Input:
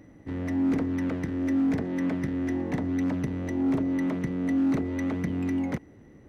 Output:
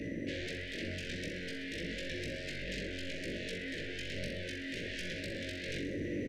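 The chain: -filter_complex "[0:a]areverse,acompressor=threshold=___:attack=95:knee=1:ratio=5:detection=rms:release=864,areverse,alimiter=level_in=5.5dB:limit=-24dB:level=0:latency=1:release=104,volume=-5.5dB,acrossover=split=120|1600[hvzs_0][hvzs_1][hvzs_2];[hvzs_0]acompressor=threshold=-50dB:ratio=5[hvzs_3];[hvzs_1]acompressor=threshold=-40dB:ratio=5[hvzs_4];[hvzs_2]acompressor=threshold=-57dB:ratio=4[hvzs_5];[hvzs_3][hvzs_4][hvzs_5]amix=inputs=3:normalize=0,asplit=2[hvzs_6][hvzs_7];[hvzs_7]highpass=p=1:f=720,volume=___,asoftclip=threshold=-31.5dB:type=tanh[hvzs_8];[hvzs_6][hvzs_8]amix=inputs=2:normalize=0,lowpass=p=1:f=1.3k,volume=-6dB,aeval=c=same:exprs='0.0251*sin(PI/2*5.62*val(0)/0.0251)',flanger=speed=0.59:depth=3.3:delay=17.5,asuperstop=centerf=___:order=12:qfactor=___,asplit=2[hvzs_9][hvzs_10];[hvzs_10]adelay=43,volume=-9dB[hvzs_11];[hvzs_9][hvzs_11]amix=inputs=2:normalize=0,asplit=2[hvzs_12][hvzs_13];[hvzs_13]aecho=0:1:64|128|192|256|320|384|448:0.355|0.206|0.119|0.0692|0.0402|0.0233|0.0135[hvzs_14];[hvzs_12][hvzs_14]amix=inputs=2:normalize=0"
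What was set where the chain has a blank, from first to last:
-34dB, 16dB, 1000, 0.91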